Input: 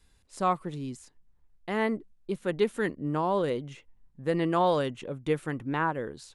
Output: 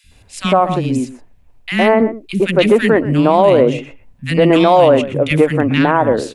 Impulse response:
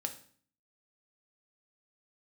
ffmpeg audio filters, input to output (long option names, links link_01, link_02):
-filter_complex "[0:a]asplit=2[link_01][link_02];[link_02]aecho=0:1:124:0.15[link_03];[link_01][link_03]amix=inputs=2:normalize=0,aeval=exprs='0.237*(cos(1*acos(clip(val(0)/0.237,-1,1)))-cos(1*PI/2))+0.0266*(cos(3*acos(clip(val(0)/0.237,-1,1)))-cos(3*PI/2))':channel_layout=same,equalizer=frequency=100:width_type=o:width=0.67:gain=9,equalizer=frequency=250:width_type=o:width=0.67:gain=8,equalizer=frequency=630:width_type=o:width=0.67:gain=10,equalizer=frequency=2500:width_type=o:width=0.67:gain=10,acrossover=split=230|1800[link_04][link_05][link_06];[link_04]adelay=40[link_07];[link_05]adelay=110[link_08];[link_07][link_08][link_06]amix=inputs=3:normalize=0,alimiter=level_in=19dB:limit=-1dB:release=50:level=0:latency=1,volume=-1dB"